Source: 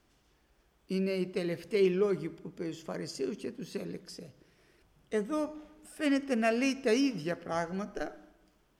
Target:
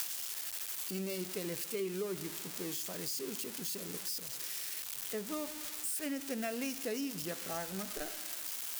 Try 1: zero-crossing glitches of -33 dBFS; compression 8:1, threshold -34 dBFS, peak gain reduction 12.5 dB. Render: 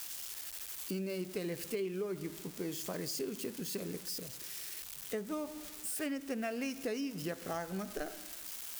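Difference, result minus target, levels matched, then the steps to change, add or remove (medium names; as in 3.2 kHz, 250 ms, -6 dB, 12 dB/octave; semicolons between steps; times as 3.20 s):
zero-crossing glitches: distortion -11 dB
change: zero-crossing glitches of -21.5 dBFS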